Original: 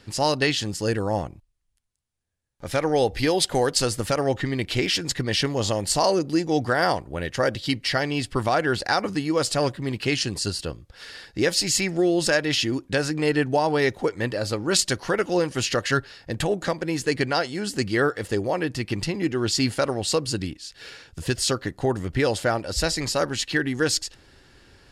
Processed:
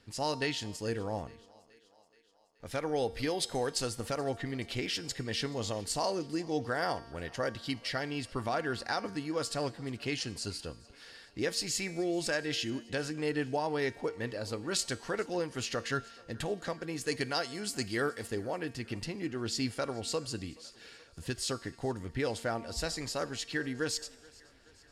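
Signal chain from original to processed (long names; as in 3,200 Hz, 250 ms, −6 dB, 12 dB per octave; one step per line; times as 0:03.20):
0:17.01–0:18.30: high-shelf EQ 4,500 Hz +10 dB
tuned comb filter 230 Hz, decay 1.1 s, mix 60%
feedback echo with a high-pass in the loop 427 ms, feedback 63%, high-pass 260 Hz, level −23.5 dB
on a send at −18 dB: convolution reverb RT60 0.35 s, pre-delay 3 ms
on the sum: level −3.5 dB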